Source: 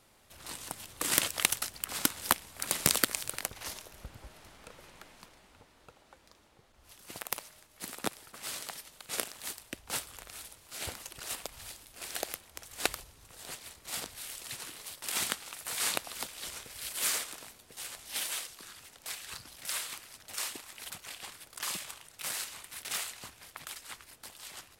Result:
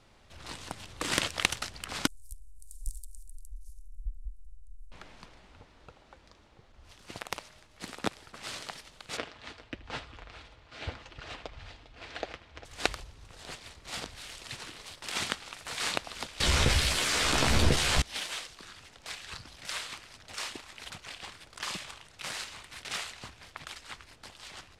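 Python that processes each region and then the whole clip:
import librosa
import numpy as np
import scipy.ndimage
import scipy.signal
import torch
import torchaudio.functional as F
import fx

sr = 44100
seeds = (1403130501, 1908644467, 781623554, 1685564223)

y = fx.chain(x, sr, fx.cheby2_bandstop(low_hz=200.0, high_hz=1900.0, order=4, stop_db=80),
    fx.bass_treble(bass_db=12, treble_db=-7), at=(2.07, 4.92))
y = fx.chain(y, sr, fx.lowpass(hz=3500.0, slope=12),
    fx.notch_comb(f0_hz=190.0),
    fx.echo_multitap(ms=(78, 401), db=(-19.0, -17.5)), at=(9.17, 12.65))
y = fx.chain(y, sr, fx.low_shelf(hz=240.0, db=8.0),
    fx.doubler(ms=14.0, db=-5),
    fx.env_flatten(amount_pct=100), at=(16.4, 18.02))
y = scipy.signal.sosfilt(scipy.signal.butter(2, 5400.0, 'lowpass', fs=sr, output='sos'), y)
y = fx.low_shelf(y, sr, hz=110.0, db=8.5)
y = F.gain(torch.from_numpy(y), 2.5).numpy()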